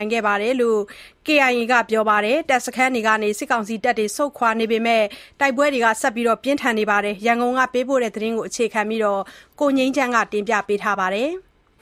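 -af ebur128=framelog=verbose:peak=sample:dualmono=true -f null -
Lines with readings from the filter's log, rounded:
Integrated loudness:
  I:         -16.5 LUFS
  Threshold: -26.7 LUFS
Loudness range:
  LRA:         2.3 LU
  Threshold: -36.6 LUFS
  LRA low:   -17.8 LUFS
  LRA high:  -15.5 LUFS
Sample peak:
  Peak:       -2.1 dBFS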